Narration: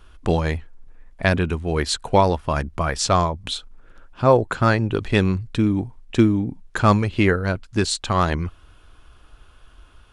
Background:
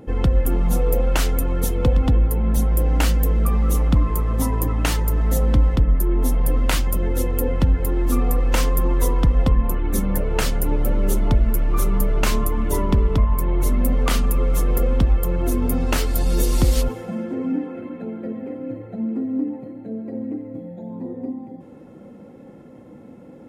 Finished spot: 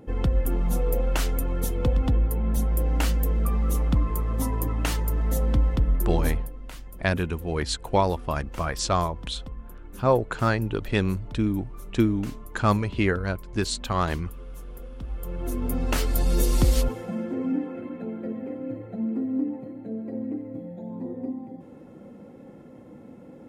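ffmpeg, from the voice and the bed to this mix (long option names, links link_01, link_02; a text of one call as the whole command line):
ffmpeg -i stem1.wav -i stem2.wav -filter_complex "[0:a]adelay=5800,volume=-5.5dB[link_01];[1:a]volume=13dB,afade=type=out:start_time=6.3:duration=0.2:silence=0.158489,afade=type=in:start_time=14.98:duration=1.16:silence=0.11885[link_02];[link_01][link_02]amix=inputs=2:normalize=0" out.wav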